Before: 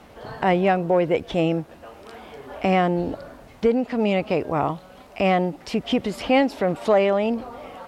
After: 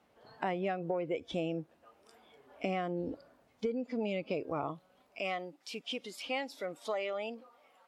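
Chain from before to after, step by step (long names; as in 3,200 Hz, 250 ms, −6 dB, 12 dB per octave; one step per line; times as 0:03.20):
noise reduction from a noise print of the clip's start 13 dB
high-pass filter 160 Hz 6 dB per octave, from 0:05.19 1,200 Hz
downward compressor 6 to 1, threshold −23 dBFS, peak gain reduction 8 dB
level −7.5 dB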